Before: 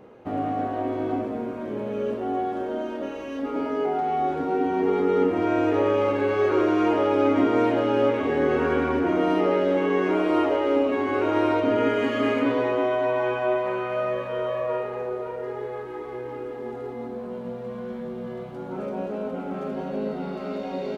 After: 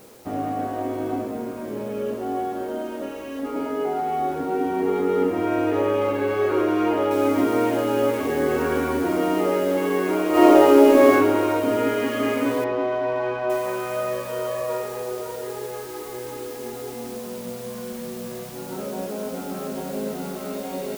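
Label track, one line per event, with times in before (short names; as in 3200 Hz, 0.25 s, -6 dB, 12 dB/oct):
7.110000	7.110000	noise floor step -53 dB -43 dB
10.300000	11.130000	reverb throw, RT60 1.2 s, DRR -7.5 dB
12.640000	13.500000	air absorption 220 m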